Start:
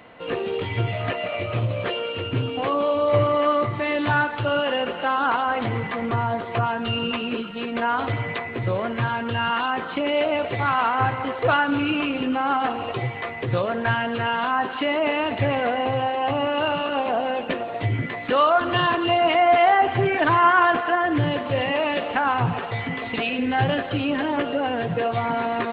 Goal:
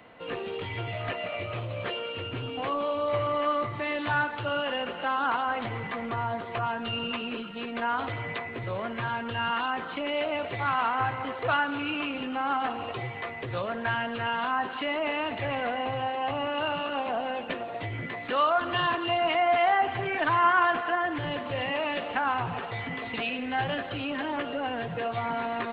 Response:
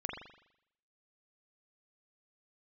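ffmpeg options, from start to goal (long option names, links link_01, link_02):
-filter_complex "[0:a]acrossover=split=370|550[link_01][link_02][link_03];[link_01]asoftclip=type=tanh:threshold=-28.5dB[link_04];[link_02]acompressor=threshold=-40dB:ratio=6[link_05];[link_04][link_05][link_03]amix=inputs=3:normalize=0,volume=-5dB"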